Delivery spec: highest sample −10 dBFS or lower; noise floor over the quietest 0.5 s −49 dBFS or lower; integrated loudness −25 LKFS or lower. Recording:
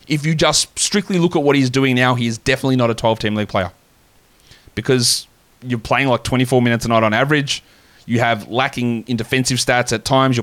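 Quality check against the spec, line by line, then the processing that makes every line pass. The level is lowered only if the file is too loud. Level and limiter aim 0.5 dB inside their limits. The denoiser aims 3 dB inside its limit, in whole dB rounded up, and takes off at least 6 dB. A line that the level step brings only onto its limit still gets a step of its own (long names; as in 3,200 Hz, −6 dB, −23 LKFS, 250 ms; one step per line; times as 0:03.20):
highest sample −3.0 dBFS: out of spec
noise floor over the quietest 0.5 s −53 dBFS: in spec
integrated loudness −16.5 LKFS: out of spec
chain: level −9 dB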